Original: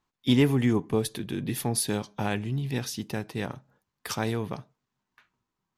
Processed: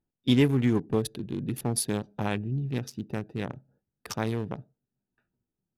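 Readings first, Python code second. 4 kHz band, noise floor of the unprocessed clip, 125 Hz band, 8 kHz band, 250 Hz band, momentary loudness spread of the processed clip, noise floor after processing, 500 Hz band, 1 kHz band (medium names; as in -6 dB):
-2.5 dB, -85 dBFS, 0.0 dB, -2.0 dB, -0.5 dB, 14 LU, under -85 dBFS, -1.0 dB, -2.0 dB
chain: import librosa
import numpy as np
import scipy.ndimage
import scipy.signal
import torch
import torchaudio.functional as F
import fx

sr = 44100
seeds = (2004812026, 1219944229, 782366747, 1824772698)

y = fx.wiener(x, sr, points=41)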